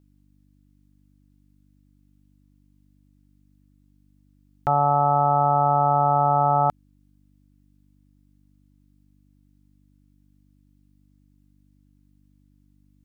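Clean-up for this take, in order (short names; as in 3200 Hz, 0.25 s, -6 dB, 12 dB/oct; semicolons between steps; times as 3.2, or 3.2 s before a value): de-hum 49.2 Hz, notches 6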